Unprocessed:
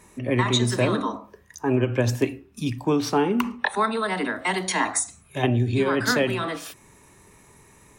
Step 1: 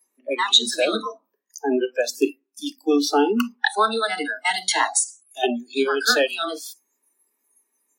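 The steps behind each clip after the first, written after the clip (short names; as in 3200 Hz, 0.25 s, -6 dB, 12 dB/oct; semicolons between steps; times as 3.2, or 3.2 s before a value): spectral noise reduction 29 dB; steep high-pass 220 Hz 96 dB/oct; dynamic EQ 4000 Hz, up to +7 dB, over -48 dBFS, Q 3.1; gain +4 dB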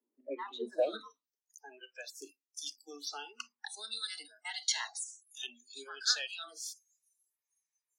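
band-pass sweep 260 Hz -> 6000 Hz, 0.5–1.32; photocell phaser 0.69 Hz; gain +1.5 dB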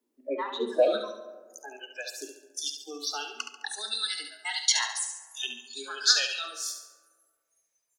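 feedback echo 70 ms, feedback 44%, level -8 dB; on a send at -14 dB: reverb RT60 1.9 s, pre-delay 15 ms; on the sum: gain +8 dB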